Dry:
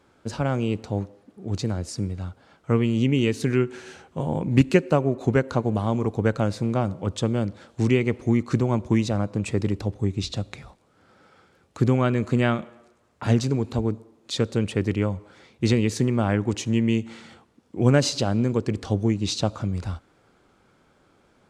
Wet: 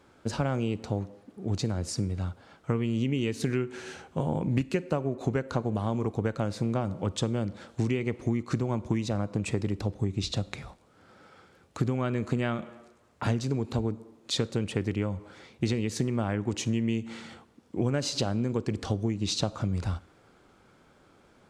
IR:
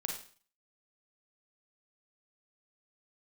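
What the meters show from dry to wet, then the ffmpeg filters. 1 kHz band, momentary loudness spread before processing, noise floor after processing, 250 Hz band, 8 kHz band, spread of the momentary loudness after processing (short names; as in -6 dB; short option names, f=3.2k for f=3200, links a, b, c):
-5.5 dB, 11 LU, -61 dBFS, -6.5 dB, -3.0 dB, 8 LU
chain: -filter_complex "[0:a]acompressor=threshold=-25dB:ratio=6,asplit=2[a][b];[1:a]atrim=start_sample=2205[c];[b][c]afir=irnorm=-1:irlink=0,volume=-18dB[d];[a][d]amix=inputs=2:normalize=0"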